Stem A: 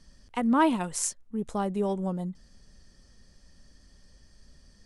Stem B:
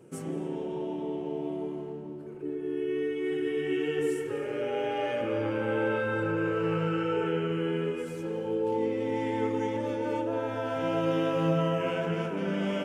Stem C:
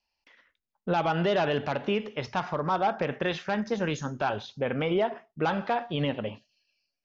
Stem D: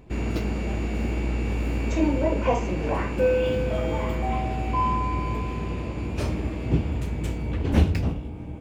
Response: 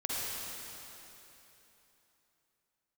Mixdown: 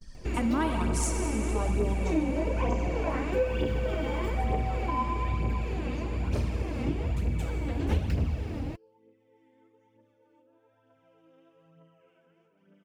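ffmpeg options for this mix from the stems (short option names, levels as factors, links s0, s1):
-filter_complex "[0:a]agate=range=0.0224:threshold=0.00224:ratio=3:detection=peak,bandreject=f=50:t=h:w=6,bandreject=f=100:t=h:w=6,bandreject=f=150:t=h:w=6,bandreject=f=200:t=h:w=6,volume=1.12,asplit=3[s0][s1][s2];[s1]volume=0.376[s3];[1:a]adelay=200,volume=1.19[s4];[2:a]adelay=2000,volume=0.168[s5];[3:a]adelay=150,volume=0.75,asplit=2[s6][s7];[s7]volume=0.398[s8];[s2]apad=whole_len=575246[s9];[s4][s9]sidechaingate=range=0.0141:threshold=0.00282:ratio=16:detection=peak[s10];[4:a]atrim=start_sample=2205[s11];[s3][s8]amix=inputs=2:normalize=0[s12];[s12][s11]afir=irnorm=-1:irlink=0[s13];[s0][s10][s5][s6][s13]amix=inputs=5:normalize=0,aphaser=in_gain=1:out_gain=1:delay=4:decay=0.51:speed=1.1:type=triangular,acompressor=threshold=0.0282:ratio=2"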